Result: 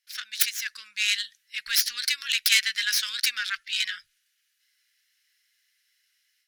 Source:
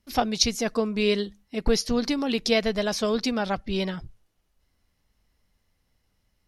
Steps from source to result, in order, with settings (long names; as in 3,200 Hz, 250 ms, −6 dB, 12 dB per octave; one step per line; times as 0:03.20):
stylus tracing distortion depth 0.33 ms
elliptic high-pass filter 1,600 Hz, stop band 50 dB
automatic gain control gain up to 9 dB